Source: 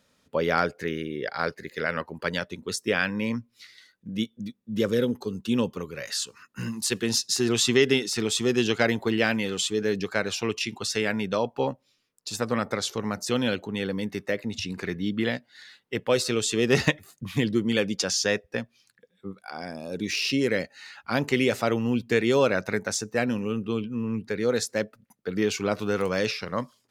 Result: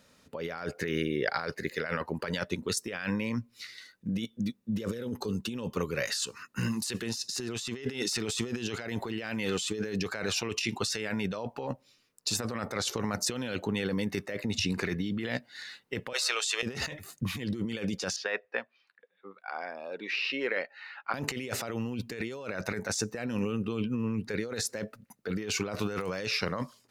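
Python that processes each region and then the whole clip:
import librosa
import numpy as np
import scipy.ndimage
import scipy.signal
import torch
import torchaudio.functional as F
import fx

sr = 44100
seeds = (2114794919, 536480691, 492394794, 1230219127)

y = fx.chain(x, sr, fx.highpass(hz=720.0, slope=24),
    fx.high_shelf(hz=7000.0, db=-7.0), at=(16.13, 16.63))
y = fx.chain(y, sr, fx.highpass(hz=730.0, slope=12),
    fx.air_absorb(metres=400.0), at=(18.16, 21.14))
y = fx.notch(y, sr, hz=3300.0, q=16.0)
y = fx.dynamic_eq(y, sr, hz=260.0, q=0.73, threshold_db=-33.0, ratio=4.0, max_db=-3)
y = fx.over_compress(y, sr, threshold_db=-33.0, ratio=-1.0)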